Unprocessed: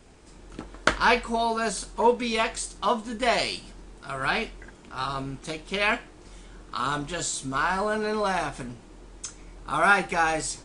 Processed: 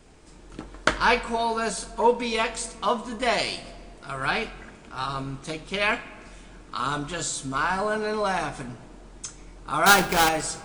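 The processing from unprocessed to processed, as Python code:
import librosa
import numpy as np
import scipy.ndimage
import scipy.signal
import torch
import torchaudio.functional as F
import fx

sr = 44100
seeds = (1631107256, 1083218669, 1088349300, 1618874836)

y = fx.halfwave_hold(x, sr, at=(9.86, 10.29))
y = fx.room_shoebox(y, sr, seeds[0], volume_m3=3800.0, walls='mixed', distance_m=0.47)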